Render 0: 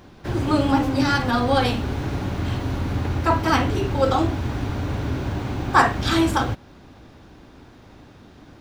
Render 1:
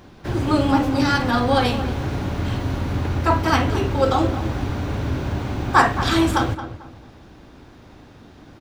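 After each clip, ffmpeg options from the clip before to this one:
ffmpeg -i in.wav -filter_complex "[0:a]asplit=2[link_01][link_02];[link_02]adelay=222,lowpass=frequency=2000:poles=1,volume=-11dB,asplit=2[link_03][link_04];[link_04]adelay=222,lowpass=frequency=2000:poles=1,volume=0.3,asplit=2[link_05][link_06];[link_06]adelay=222,lowpass=frequency=2000:poles=1,volume=0.3[link_07];[link_01][link_03][link_05][link_07]amix=inputs=4:normalize=0,volume=1dB" out.wav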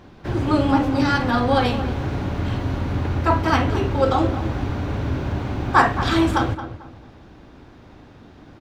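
ffmpeg -i in.wav -af "highshelf=frequency=5800:gain=-9.5" out.wav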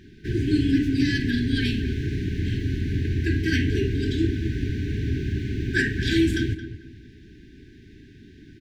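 ffmpeg -i in.wav -af "afftfilt=real='re*(1-between(b*sr/4096,440,1500))':imag='im*(1-between(b*sr/4096,440,1500))':win_size=4096:overlap=0.75,volume=-1.5dB" out.wav

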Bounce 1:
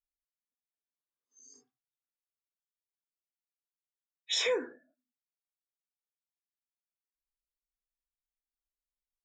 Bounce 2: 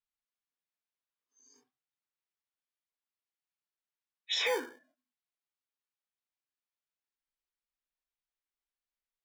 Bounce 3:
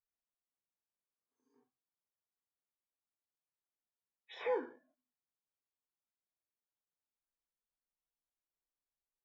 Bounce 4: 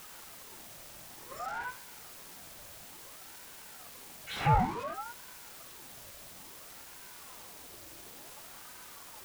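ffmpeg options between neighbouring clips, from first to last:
ffmpeg -i in.wav -filter_complex "[0:a]lowpass=4000,lowshelf=frequency=290:gain=-9,acrossover=split=500|630|2300[link_01][link_02][link_03][link_04];[link_01]acrusher=samples=33:mix=1:aa=0.000001[link_05];[link_05][link_02][link_03][link_04]amix=inputs=4:normalize=0,volume=2dB" out.wav
ffmpeg -i in.wav -af "lowpass=1100,volume=-1.5dB" out.wav
ffmpeg -i in.wav -af "aeval=exprs='val(0)+0.5*0.00531*sgn(val(0))':channel_layout=same,equalizer=frequency=260:width_type=o:width=0.83:gain=10,aeval=exprs='val(0)*sin(2*PI*790*n/s+790*0.6/0.57*sin(2*PI*0.57*n/s))':channel_layout=same,volume=10dB" out.wav

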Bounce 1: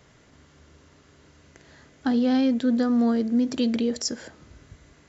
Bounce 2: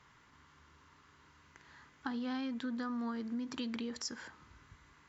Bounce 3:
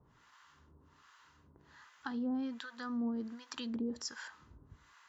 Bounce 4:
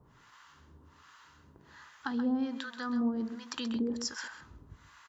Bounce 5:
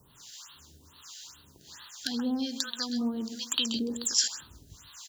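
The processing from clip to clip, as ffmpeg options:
ffmpeg -i in.wav -af "lowpass=frequency=3400:poles=1,lowshelf=frequency=790:width_type=q:width=3:gain=-7,acompressor=threshold=-31dB:ratio=5,volume=-4.5dB" out.wav
ffmpeg -i in.wav -filter_complex "[0:a]equalizer=frequency=2200:width_type=o:width=0.22:gain=-7,acrossover=split=730[link_01][link_02];[link_01]aeval=exprs='val(0)*(1-1/2+1/2*cos(2*PI*1.3*n/s))':channel_layout=same[link_03];[link_02]aeval=exprs='val(0)*(1-1/2-1/2*cos(2*PI*1.3*n/s))':channel_layout=same[link_04];[link_03][link_04]amix=inputs=2:normalize=0,volume=4dB" out.wav
ffmpeg -i in.wav -af "aecho=1:1:131:0.316,volume=5dB" out.wav
ffmpeg -i in.wav -af "volume=23.5dB,asoftclip=hard,volume=-23.5dB,aexciter=amount=8.7:drive=6.5:freq=3100,afftfilt=real='re*(1-between(b*sr/1024,1000*pow(6500/1000,0.5+0.5*sin(2*PI*2.3*pts/sr))/1.41,1000*pow(6500/1000,0.5+0.5*sin(2*PI*2.3*pts/sr))*1.41))':imag='im*(1-between(b*sr/1024,1000*pow(6500/1000,0.5+0.5*sin(2*PI*2.3*pts/sr))/1.41,1000*pow(6500/1000,0.5+0.5*sin(2*PI*2.3*pts/sr))*1.41))':win_size=1024:overlap=0.75" out.wav

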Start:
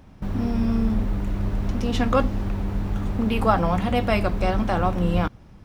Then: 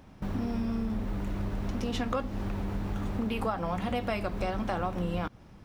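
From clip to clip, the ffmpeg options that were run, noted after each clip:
ffmpeg -i in.wav -af "lowshelf=frequency=140:gain=-6,acompressor=threshold=-26dB:ratio=6,volume=-1.5dB" out.wav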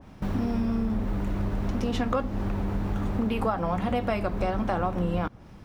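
ffmpeg -i in.wav -af "adynamicequalizer=threshold=0.00355:dfrequency=2000:dqfactor=0.7:tfrequency=2000:tqfactor=0.7:attack=5:release=100:ratio=0.375:range=3:mode=cutabove:tftype=highshelf,volume=4.5dB" out.wav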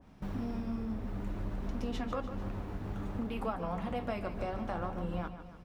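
ffmpeg -i in.wav -af "aecho=1:1:147|294|441|588|735|882:0.282|0.155|0.0853|0.0469|0.0258|0.0142,flanger=delay=4.1:depth=8.6:regen=-64:speed=0.55:shape=sinusoidal,volume=-5.5dB" out.wav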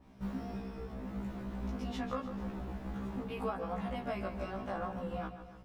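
ffmpeg -i in.wav -af "afftfilt=real='re*1.73*eq(mod(b,3),0)':imag='im*1.73*eq(mod(b,3),0)':win_size=2048:overlap=0.75,volume=1.5dB" out.wav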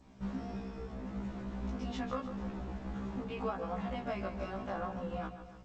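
ffmpeg -i in.wav -ar 16000 -c:a g722 out.g722

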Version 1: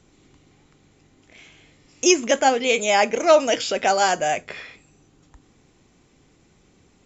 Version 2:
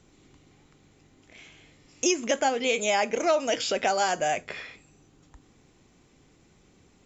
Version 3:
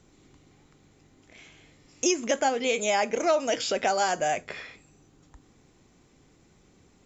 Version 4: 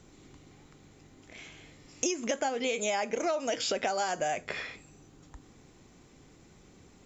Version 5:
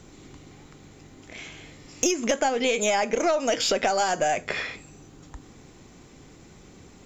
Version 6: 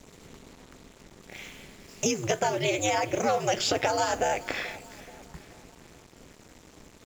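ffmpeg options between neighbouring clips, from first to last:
ffmpeg -i in.wav -af "acompressor=threshold=-20dB:ratio=3,volume=-2dB" out.wav
ffmpeg -i in.wav -af "equalizer=frequency=2800:width_type=o:width=0.75:gain=-2.5" out.wav
ffmpeg -i in.wav -af "acompressor=threshold=-31dB:ratio=5,volume=3dB" out.wav
ffmpeg -i in.wav -af "aeval=exprs='(tanh(7.08*val(0)+0.25)-tanh(0.25))/7.08':channel_layout=same,volume=8dB" out.wav
ffmpeg -i in.wav -af "aecho=1:1:431|862|1293|1724:0.112|0.0583|0.0303|0.0158,aeval=exprs='val(0)*sin(2*PI*110*n/s)':channel_layout=same,acrusher=bits=7:mix=0:aa=0.5" out.wav

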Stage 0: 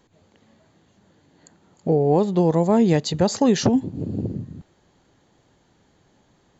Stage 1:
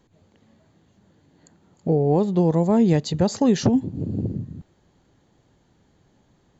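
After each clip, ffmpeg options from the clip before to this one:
ffmpeg -i in.wav -af "lowshelf=frequency=300:gain=6.5,volume=-4dB" out.wav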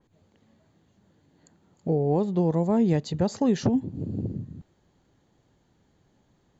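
ffmpeg -i in.wav -af "adynamicequalizer=threshold=0.01:dfrequency=2900:dqfactor=0.7:tfrequency=2900:tqfactor=0.7:attack=5:release=100:ratio=0.375:range=2:mode=cutabove:tftype=highshelf,volume=-4.5dB" out.wav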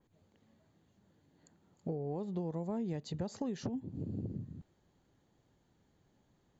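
ffmpeg -i in.wav -af "acompressor=threshold=-28dB:ratio=6,volume=-6.5dB" out.wav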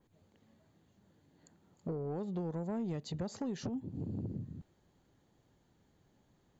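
ffmpeg -i in.wav -af "asoftclip=type=tanh:threshold=-31dB,volume=1.5dB" out.wav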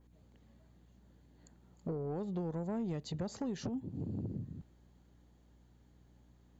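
ffmpeg -i in.wav -af "aeval=exprs='val(0)+0.000708*(sin(2*PI*60*n/s)+sin(2*PI*2*60*n/s)/2+sin(2*PI*3*60*n/s)/3+sin(2*PI*4*60*n/s)/4+sin(2*PI*5*60*n/s)/5)':channel_layout=same" out.wav

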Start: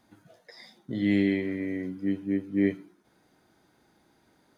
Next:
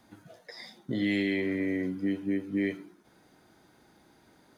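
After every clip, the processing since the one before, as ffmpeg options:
ffmpeg -i in.wav -filter_complex "[0:a]acrossover=split=320|2000[link_01][link_02][link_03];[link_01]acompressor=threshold=-36dB:ratio=6[link_04];[link_02]alimiter=level_in=6.5dB:limit=-24dB:level=0:latency=1,volume=-6.5dB[link_05];[link_04][link_05][link_03]amix=inputs=3:normalize=0,volume=4dB" out.wav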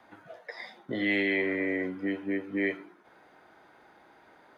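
ffmpeg -i in.wav -filter_complex "[0:a]acrossover=split=440 2800:gain=0.178 1 0.126[link_01][link_02][link_03];[link_01][link_02][link_03]amix=inputs=3:normalize=0,volume=8dB" out.wav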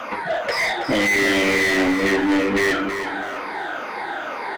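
ffmpeg -i in.wav -filter_complex "[0:a]afftfilt=real='re*pow(10,14/40*sin(2*PI*(0.88*log(max(b,1)*sr/1024/100)/log(2)-(-2.1)*(pts-256)/sr)))':imag='im*pow(10,14/40*sin(2*PI*(0.88*log(max(b,1)*sr/1024/100)/log(2)-(-2.1)*(pts-256)/sr)))':win_size=1024:overlap=0.75,asplit=2[link_01][link_02];[link_02]highpass=frequency=720:poles=1,volume=36dB,asoftclip=type=tanh:threshold=-12dB[link_03];[link_01][link_03]amix=inputs=2:normalize=0,lowpass=frequency=3400:poles=1,volume=-6dB,aecho=1:1:325|650|975|1300:0.376|0.132|0.046|0.0161" out.wav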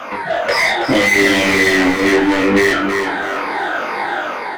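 ffmpeg -i in.wav -filter_complex "[0:a]flanger=delay=19.5:depth=3.9:speed=0.72,dynaudnorm=framelen=120:gausssize=7:maxgain=5dB,asplit=2[link_01][link_02];[link_02]alimiter=limit=-14.5dB:level=0:latency=1:release=463,volume=0dB[link_03];[link_01][link_03]amix=inputs=2:normalize=0" out.wav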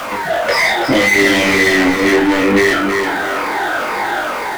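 ffmpeg -i in.wav -af "aeval=exprs='val(0)+0.5*0.0596*sgn(val(0))':channel_layout=same" out.wav

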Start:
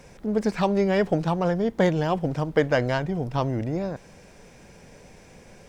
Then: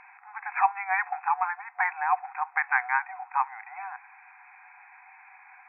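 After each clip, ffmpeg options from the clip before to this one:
ffmpeg -i in.wav -af "afftfilt=real='re*between(b*sr/4096,730,2600)':imag='im*between(b*sr/4096,730,2600)':win_size=4096:overlap=0.75,volume=5.5dB" out.wav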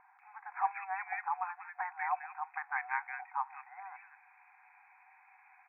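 ffmpeg -i in.wav -filter_complex "[0:a]acrossover=split=1700[link_01][link_02];[link_02]adelay=190[link_03];[link_01][link_03]amix=inputs=2:normalize=0,volume=-8.5dB" out.wav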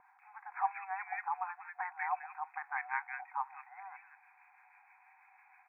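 ffmpeg -i in.wav -filter_complex "[0:a]acrossover=split=960[link_01][link_02];[link_01]aeval=exprs='val(0)*(1-0.5/2+0.5/2*cos(2*PI*6.2*n/s))':channel_layout=same[link_03];[link_02]aeval=exprs='val(0)*(1-0.5/2-0.5/2*cos(2*PI*6.2*n/s))':channel_layout=same[link_04];[link_03][link_04]amix=inputs=2:normalize=0,volume=1dB" out.wav

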